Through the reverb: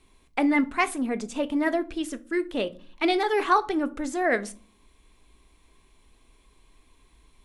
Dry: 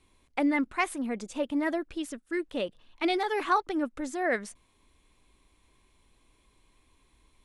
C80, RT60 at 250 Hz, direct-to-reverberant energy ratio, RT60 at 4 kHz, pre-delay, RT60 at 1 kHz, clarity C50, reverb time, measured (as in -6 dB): 26.0 dB, 0.75 s, 10.5 dB, 0.25 s, 3 ms, 0.35 s, 20.5 dB, 0.45 s